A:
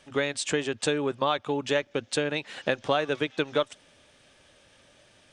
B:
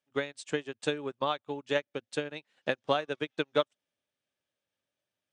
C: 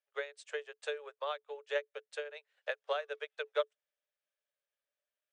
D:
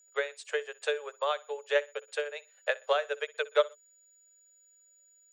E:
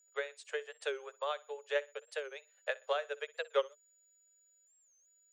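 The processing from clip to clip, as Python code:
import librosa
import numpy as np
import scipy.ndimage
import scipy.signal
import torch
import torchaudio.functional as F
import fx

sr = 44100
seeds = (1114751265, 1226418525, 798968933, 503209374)

y1 = scipy.signal.sosfilt(scipy.signal.butter(2, 93.0, 'highpass', fs=sr, output='sos'), x)
y1 = fx.upward_expand(y1, sr, threshold_db=-41.0, expansion=2.5)
y2 = scipy.signal.sosfilt(scipy.signal.cheby1(6, 6, 420.0, 'highpass', fs=sr, output='sos'), y1)
y2 = F.gain(torch.from_numpy(y2), -4.0).numpy()
y3 = y2 + 10.0 ** (-68.0 / 20.0) * np.sin(2.0 * np.pi * 6900.0 * np.arange(len(y2)) / sr)
y3 = fx.echo_feedback(y3, sr, ms=62, feedback_pct=29, wet_db=-21.0)
y3 = F.gain(torch.from_numpy(y3), 7.5).numpy()
y4 = fx.record_warp(y3, sr, rpm=45.0, depth_cents=160.0)
y4 = F.gain(torch.from_numpy(y4), -6.5).numpy()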